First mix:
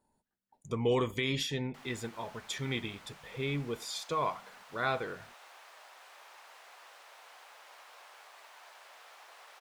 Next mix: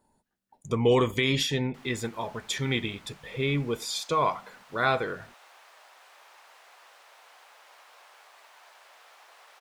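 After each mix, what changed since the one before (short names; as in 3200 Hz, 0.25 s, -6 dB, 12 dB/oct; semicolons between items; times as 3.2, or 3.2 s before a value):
speech +7.0 dB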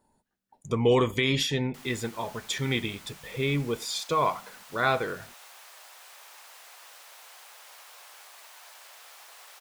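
background: remove LPF 2000 Hz 6 dB/oct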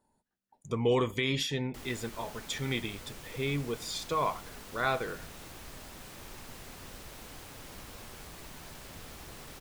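speech -5.0 dB; background: remove HPF 670 Hz 24 dB/oct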